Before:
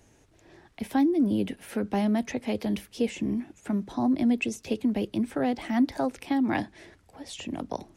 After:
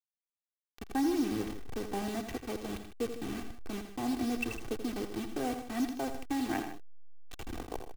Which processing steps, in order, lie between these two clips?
send-on-delta sampling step -28.5 dBFS; comb 2.6 ms, depth 51%; multi-tap echo 83/107/154 ms -9/-19.5/-13 dB; trim -7.5 dB

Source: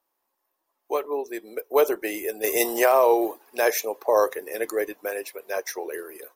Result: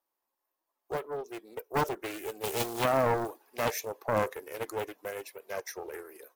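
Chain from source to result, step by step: loudspeaker Doppler distortion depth 0.68 ms; trim -8 dB

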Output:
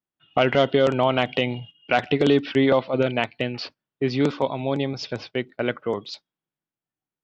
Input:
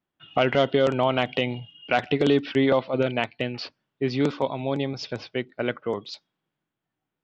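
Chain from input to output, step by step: gate -43 dBFS, range -12 dB; trim +2 dB

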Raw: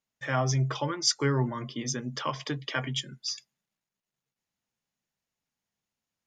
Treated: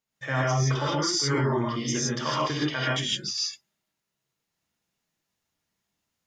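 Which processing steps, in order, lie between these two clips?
gated-style reverb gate 180 ms rising, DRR -6 dB; peak limiter -16.5 dBFS, peak gain reduction 10.5 dB

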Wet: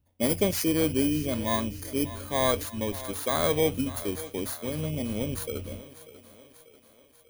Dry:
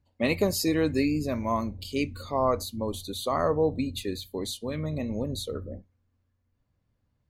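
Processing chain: bit-reversed sample order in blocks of 16 samples; on a send: thinning echo 591 ms, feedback 59%, high-pass 260 Hz, level -15 dB

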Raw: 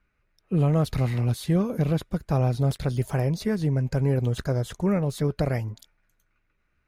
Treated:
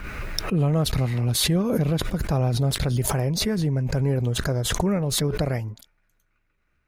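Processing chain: swell ahead of each attack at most 26 dB/s

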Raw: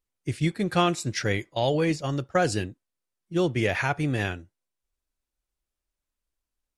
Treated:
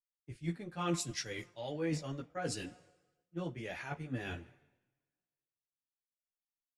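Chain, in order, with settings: two-slope reverb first 0.25 s, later 3.7 s, from -18 dB, DRR 14 dB; reverse; compression 5:1, threshold -31 dBFS, peak gain reduction 13 dB; reverse; chorus voices 6, 0.93 Hz, delay 15 ms, depth 3 ms; three bands expanded up and down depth 100%; trim -3.5 dB

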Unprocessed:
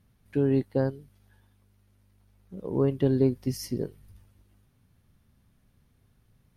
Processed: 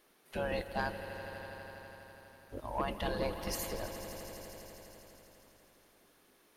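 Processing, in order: spectral gate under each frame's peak -15 dB weak; saturation -32 dBFS, distortion -19 dB; echo with a slow build-up 82 ms, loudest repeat 5, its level -15 dB; trim +8 dB

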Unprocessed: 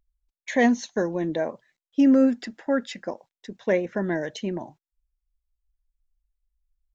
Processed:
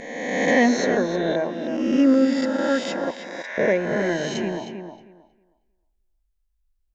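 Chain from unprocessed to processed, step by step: reverse spectral sustain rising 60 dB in 1.55 s; 3.11–3.58 s: high-pass 940 Hz 24 dB/octave; tape echo 314 ms, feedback 21%, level -7 dB, low-pass 3.7 kHz

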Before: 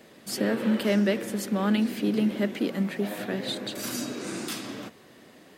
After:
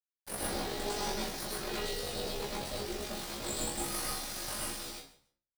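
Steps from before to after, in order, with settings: high-order bell 4.8 kHz +15.5 dB 1 oct; full-wave rectifier; bit crusher 6-bit; feedback delay 142 ms, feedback 19%, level -17 dB; ring modulator 24 Hz; high-pass 54 Hz 12 dB/octave; in parallel at -2 dB: peak limiter -20.5 dBFS, peak gain reduction 7.5 dB; on the sum: feedback comb 69 Hz, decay 0.25 s, harmonics all, mix 90%; reverberation RT60 0.40 s, pre-delay 98 ms, DRR -4 dB; trim -8 dB

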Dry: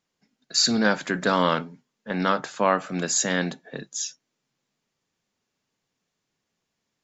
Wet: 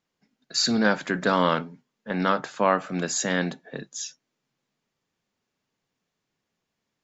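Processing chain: treble shelf 5.7 kHz -7.5 dB

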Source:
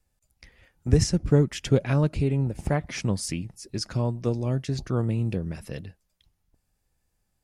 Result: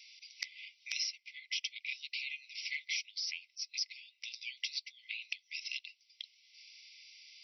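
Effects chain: brick-wall FIR band-pass 2–5.9 kHz; three bands compressed up and down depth 100%; trim +2 dB

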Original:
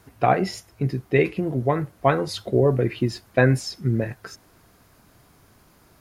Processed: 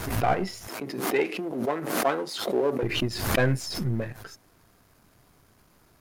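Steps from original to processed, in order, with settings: partial rectifier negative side -7 dB; 0.68–2.83 s: high-pass 230 Hz 24 dB/octave; swell ahead of each attack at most 54 dB/s; trim -2.5 dB

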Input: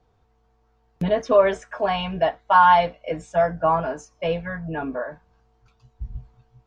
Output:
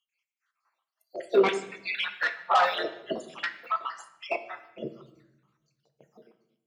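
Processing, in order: random holes in the spectrogram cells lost 66%; gate -50 dBFS, range -11 dB; spectral gate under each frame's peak -15 dB weak; in parallel at -7 dB: sine folder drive 9 dB, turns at -19 dBFS; on the sum: LFO high-pass saw down 0.61 Hz 230–3000 Hz; on a send at -8 dB: reverberation RT60 0.90 s, pre-delay 6 ms

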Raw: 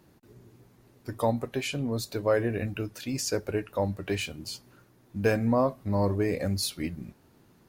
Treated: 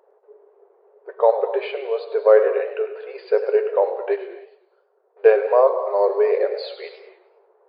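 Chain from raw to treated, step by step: level-controlled noise filter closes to 890 Hz, open at -21 dBFS; tilt EQ -4.5 dB/octave; 4.16–5.17 s: compression 2.5:1, threshold -55 dBFS, peak gain reduction 21.5 dB; brick-wall FIR band-pass 390–4900 Hz; gated-style reverb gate 310 ms flat, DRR 9.5 dB; modulated delay 101 ms, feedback 39%, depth 161 cents, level -12.5 dB; trim +7.5 dB

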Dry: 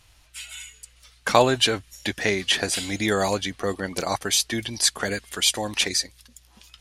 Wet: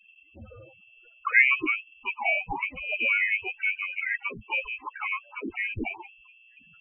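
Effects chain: frequency inversion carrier 2.7 kHz; loudest bins only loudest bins 8; harmony voices +3 st -15 dB

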